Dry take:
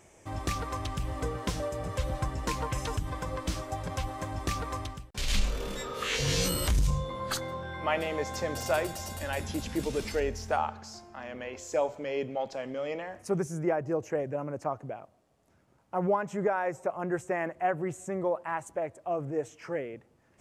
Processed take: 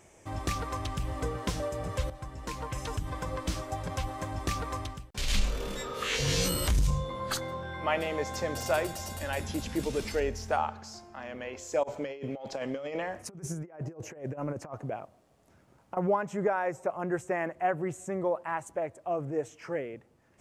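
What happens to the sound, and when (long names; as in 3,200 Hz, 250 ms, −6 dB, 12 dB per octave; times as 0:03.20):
0:02.10–0:03.24: fade in, from −12.5 dB
0:11.83–0:15.97: compressor whose output falls as the input rises −36 dBFS, ratio −0.5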